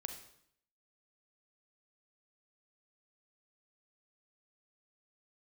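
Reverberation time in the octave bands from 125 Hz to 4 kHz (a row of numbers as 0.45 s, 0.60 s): 0.75 s, 0.75 s, 0.70 s, 0.70 s, 0.65 s, 0.65 s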